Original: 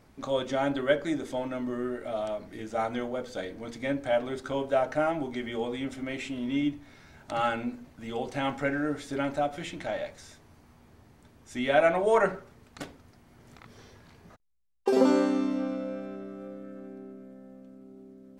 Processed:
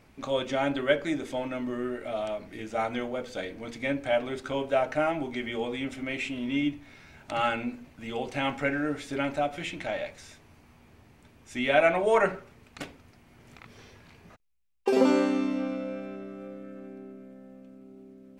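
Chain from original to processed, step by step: peaking EQ 2.5 kHz +7.5 dB 0.58 oct

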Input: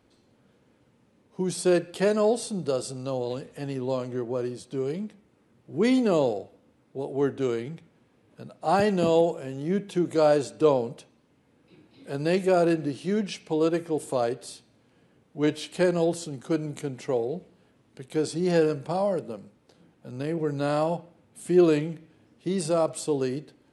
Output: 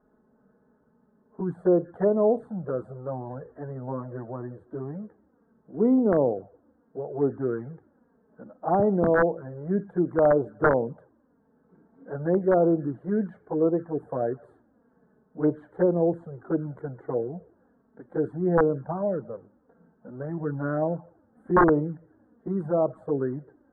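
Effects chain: touch-sensitive flanger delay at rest 4.8 ms, full sweep at -19.5 dBFS; integer overflow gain 13.5 dB; elliptic low-pass 1.6 kHz, stop band 40 dB; trim +2.5 dB

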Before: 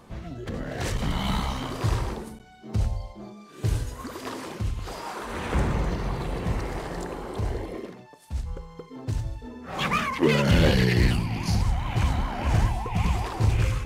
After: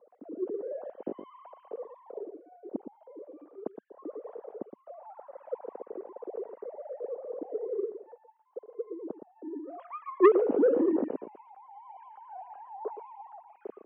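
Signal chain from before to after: formants replaced by sine waves; Chebyshev band-pass 210–520 Hz, order 2; echo from a far wall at 20 m, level -10 dB; transformer saturation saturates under 680 Hz; trim -3.5 dB

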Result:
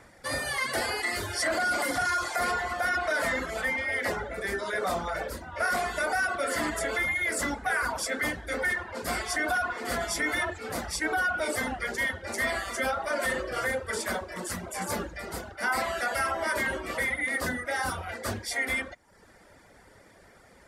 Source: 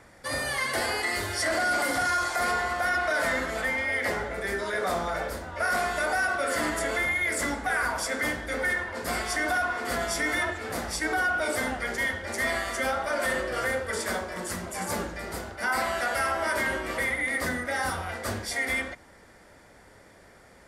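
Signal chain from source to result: reverb removal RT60 0.69 s

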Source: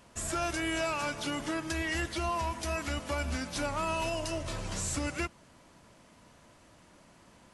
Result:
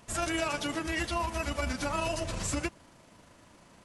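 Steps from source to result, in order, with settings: granular stretch 0.51×, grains 78 ms; trim +2.5 dB

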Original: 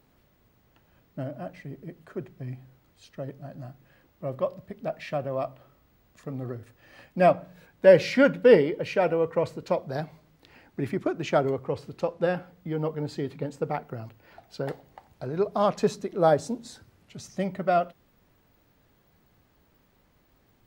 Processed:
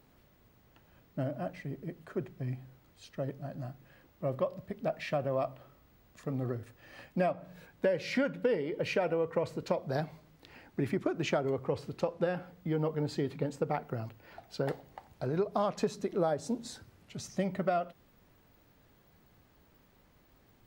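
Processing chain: compression 12:1, threshold -26 dBFS, peak gain reduction 17 dB

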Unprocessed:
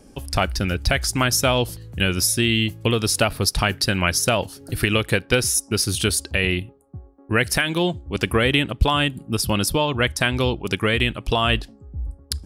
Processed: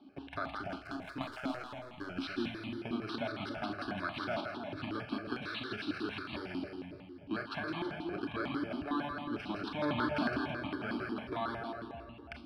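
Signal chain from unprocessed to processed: bit-reversed sample order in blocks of 16 samples; 9.82–10.38 s: waveshaping leveller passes 5; compression, threshold -22 dBFS, peak gain reduction 13 dB; cabinet simulation 260–3800 Hz, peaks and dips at 290 Hz +9 dB, 580 Hz +9 dB, 990 Hz -7 dB, 1.7 kHz +9 dB, 3.5 kHz -6 dB; static phaser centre 1.9 kHz, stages 6; 0.60–2.10 s: power-law waveshaper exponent 1.4; two-band feedback delay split 770 Hz, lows 289 ms, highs 163 ms, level -3.5 dB; Schroeder reverb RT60 0.37 s, combs from 26 ms, DRR 6 dB; stepped phaser 11 Hz 500–1500 Hz; trim -2.5 dB

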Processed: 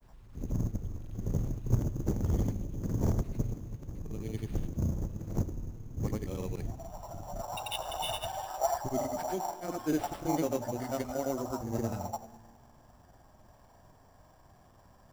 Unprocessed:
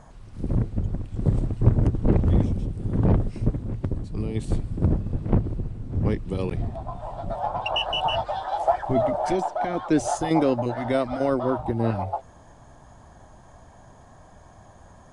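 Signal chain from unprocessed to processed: Schroeder reverb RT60 1.8 s, combs from 27 ms, DRR 15 dB; granulator, pitch spread up and down by 0 st; sample-rate reducer 6.5 kHz, jitter 0%; trim -8.5 dB

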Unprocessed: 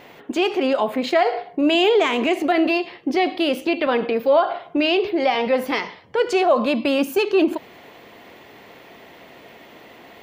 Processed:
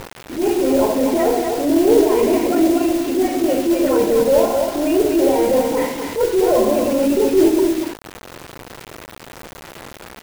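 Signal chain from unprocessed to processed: tape spacing loss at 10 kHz 27 dB; hum notches 60/120/180/240/300/360/420/480/540 Hz; phase dispersion highs, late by 75 ms, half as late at 1.3 kHz; reverberation RT60 0.70 s, pre-delay 6 ms, DRR 4.5 dB; low-pass that closes with the level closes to 790 Hz, closed at -11.5 dBFS; delay 246 ms -5.5 dB; modulation noise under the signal 11 dB; upward compressor, threshold -29 dBFS; tilt EQ -2.5 dB/octave; band-stop 1.2 kHz, Q 6.5; bit crusher 5-bit; transient shaper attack -8 dB, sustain -1 dB

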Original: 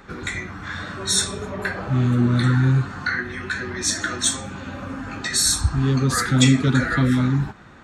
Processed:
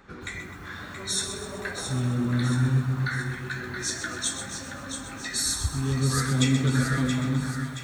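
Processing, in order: on a send: two-band feedback delay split 770 Hz, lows 263 ms, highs 675 ms, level -8 dB; on the sum: bit-crushed delay 128 ms, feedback 55%, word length 7-bit, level -9 dB; trim -8 dB

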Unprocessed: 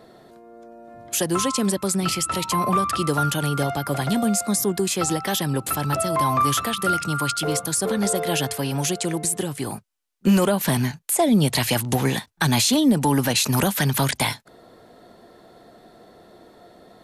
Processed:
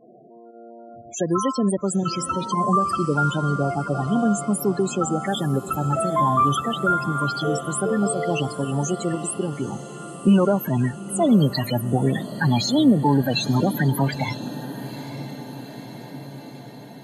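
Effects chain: level-controlled noise filter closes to 2.9 kHz, open at -18.5 dBFS; volume shaper 118 bpm, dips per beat 1, -9 dB, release 78 ms; loudest bins only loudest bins 16; on a send: echo that smears into a reverb 909 ms, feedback 65%, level -14 dB; on the sum: trim +1.5 dB

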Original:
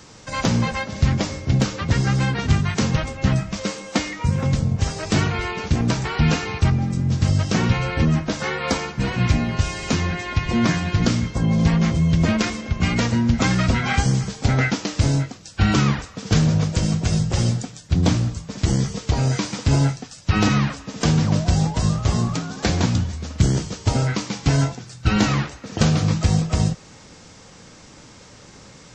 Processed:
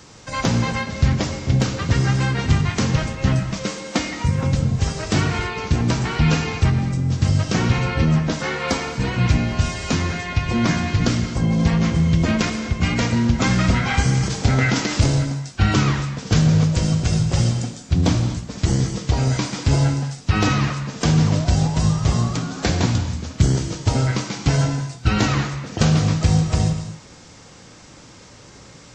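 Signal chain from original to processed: 14.17–15.22 s: transient shaper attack +1 dB, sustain +8 dB; gated-style reverb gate 280 ms flat, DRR 7 dB

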